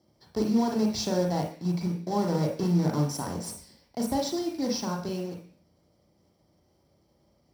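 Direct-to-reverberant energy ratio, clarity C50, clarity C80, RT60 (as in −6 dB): 1.5 dB, 6.0 dB, 11.5 dB, 0.45 s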